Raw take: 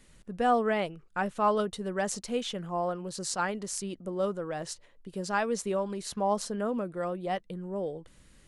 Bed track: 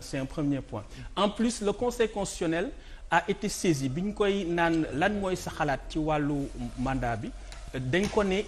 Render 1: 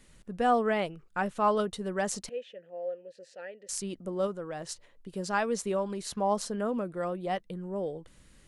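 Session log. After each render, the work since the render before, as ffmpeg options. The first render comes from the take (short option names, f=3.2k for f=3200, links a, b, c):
-filter_complex "[0:a]asettb=1/sr,asplit=3[a][b][c];[a]atrim=end=2.294[d];[b]atrim=start=2.29:end=3.69,asetpts=PTS-STARTPTS,afade=t=in:d=0.004:c=qsin,afade=t=out:st=1.396:d=0.004:c=qsin,asplit=3[e][f][g];[e]bandpass=f=530:t=q:w=8,volume=0dB[h];[f]bandpass=f=1.84k:t=q:w=8,volume=-6dB[i];[g]bandpass=f=2.48k:t=q:w=8,volume=-9dB[j];[h][i][j]amix=inputs=3:normalize=0[k];[c]atrim=start=3.686[l];[d][k]acrossfade=d=0.004:c1=hsin:c2=qsin[m];[m][l]acrossfade=d=0.004:c1=qsin:c2=hsin,asplit=3[n][o][p];[n]atrim=end=4.272[q];[o]atrim=start=4.268:end=4.692,asetpts=PTS-STARTPTS,volume=-3dB[r];[p]atrim=start=4.688[s];[q][r]acrossfade=d=0.004:c1=hsin:c2=hsin[t];[t][s]acrossfade=d=0.004:c1=hsin:c2=hsin"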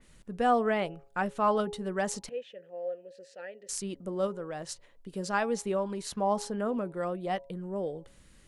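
-af "bandreject=f=138:t=h:w=4,bandreject=f=276:t=h:w=4,bandreject=f=414:t=h:w=4,bandreject=f=552:t=h:w=4,bandreject=f=690:t=h:w=4,bandreject=f=828:t=h:w=4,bandreject=f=966:t=h:w=4,adynamicequalizer=threshold=0.00447:dfrequency=3500:dqfactor=0.7:tfrequency=3500:tqfactor=0.7:attack=5:release=100:ratio=0.375:range=2.5:mode=cutabove:tftype=highshelf"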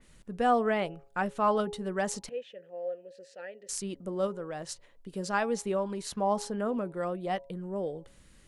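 -af anull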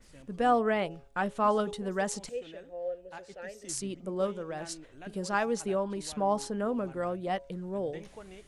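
-filter_complex "[1:a]volume=-22dB[a];[0:a][a]amix=inputs=2:normalize=0"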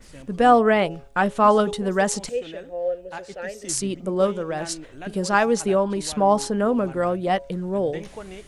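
-af "volume=10dB"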